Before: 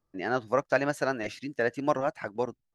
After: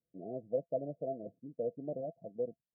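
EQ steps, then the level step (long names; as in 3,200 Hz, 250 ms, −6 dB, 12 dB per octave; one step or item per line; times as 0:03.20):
high-pass filter 130 Hz 6 dB per octave
Chebyshev low-pass with heavy ripple 700 Hz, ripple 9 dB
−3.5 dB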